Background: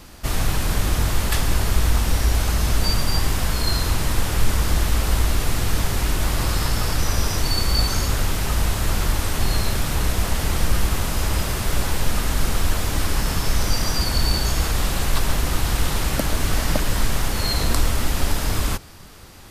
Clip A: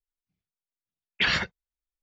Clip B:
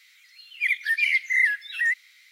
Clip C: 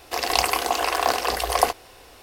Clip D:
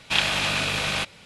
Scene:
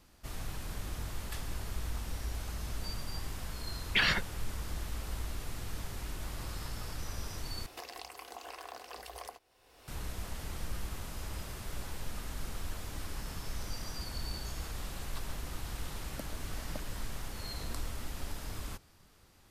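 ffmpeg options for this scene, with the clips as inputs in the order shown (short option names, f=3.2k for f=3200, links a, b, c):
-filter_complex "[0:a]volume=-19dB[a];[3:a]acompressor=threshold=-35dB:ratio=6:attack=3.8:release=373:knee=1:detection=rms[b];[a]asplit=2[c][d];[c]atrim=end=7.664[e];[b]atrim=end=2.22,asetpts=PTS-STARTPTS,volume=-5.5dB[f];[d]atrim=start=9.876[g];[1:a]atrim=end=2.02,asetpts=PTS-STARTPTS,volume=-3.5dB,afade=t=in:d=0.004:c=hsin,afade=t=out:st=2.016:d=0.004:c=hsin,adelay=2750[h];[e][f]acrossfade=d=0.004:c1=hsin:c2=hsin[i];[i][g]acrossfade=d=0.004:c1=hsin:c2=hsin[j];[j][h]amix=inputs=2:normalize=0"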